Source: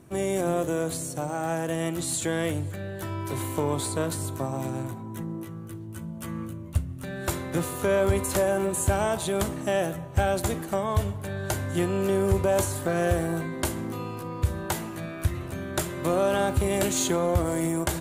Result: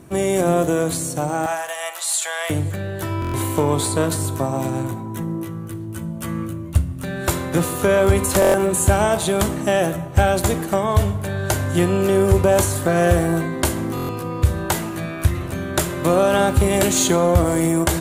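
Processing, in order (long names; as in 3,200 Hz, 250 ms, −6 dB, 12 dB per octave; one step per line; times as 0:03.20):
0:01.46–0:02.50: Butterworth high-pass 660 Hz 36 dB per octave
dense smooth reverb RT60 0.82 s, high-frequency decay 0.75×, pre-delay 0 ms, DRR 13.5 dB
buffer that repeats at 0:03.20/0:08.40/0:13.95, samples 1,024, times 5
level +8 dB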